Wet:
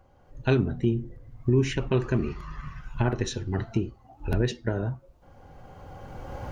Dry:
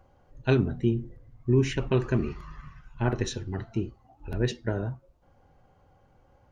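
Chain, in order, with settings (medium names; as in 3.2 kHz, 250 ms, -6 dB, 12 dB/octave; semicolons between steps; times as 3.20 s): recorder AGC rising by 14 dB/s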